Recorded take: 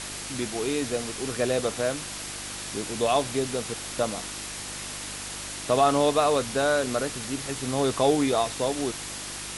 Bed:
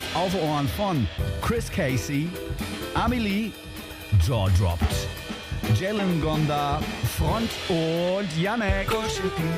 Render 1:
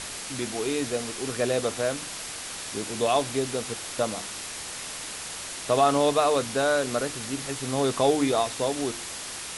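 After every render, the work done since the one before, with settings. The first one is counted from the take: de-hum 50 Hz, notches 7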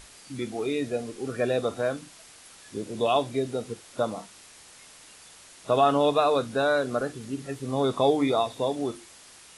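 noise print and reduce 14 dB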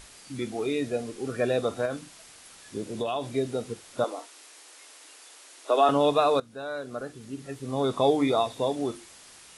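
1.85–3.29 s: compression, threshold -25 dBFS; 4.04–5.89 s: steep high-pass 270 Hz 72 dB/octave; 6.40–8.15 s: fade in linear, from -17.5 dB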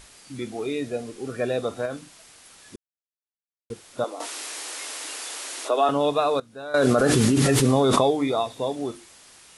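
2.76–3.70 s: mute; 4.20–5.74 s: level flattener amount 50%; 6.74–8.11 s: level flattener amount 100%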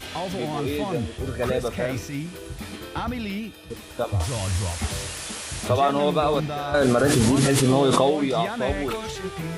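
add bed -5 dB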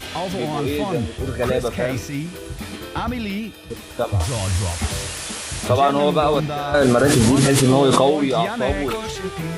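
trim +4 dB; peak limiter -2 dBFS, peak gain reduction 1 dB

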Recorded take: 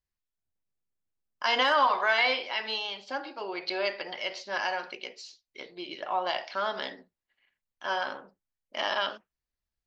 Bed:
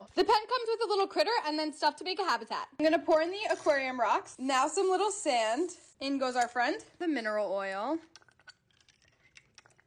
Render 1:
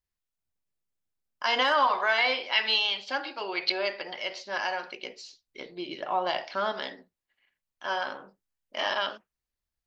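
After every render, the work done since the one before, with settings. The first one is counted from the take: 2.52–3.72 s: peaking EQ 3 kHz +8.5 dB 2.3 oct; 5.03–6.72 s: bass shelf 350 Hz +8.5 dB; 8.18–8.93 s: doubling 21 ms -5 dB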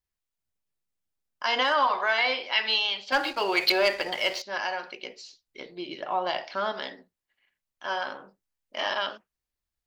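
3.12–4.42 s: waveshaping leveller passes 2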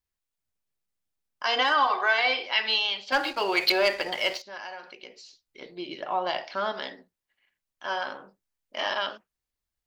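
1.45–2.46 s: comb 2.6 ms, depth 53%; 4.37–5.62 s: compression 1.5:1, threshold -50 dBFS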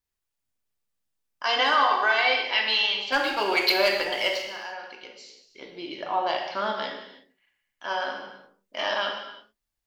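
gated-style reverb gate 370 ms falling, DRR 2 dB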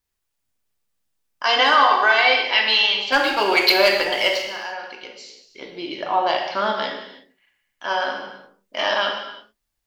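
trim +6 dB

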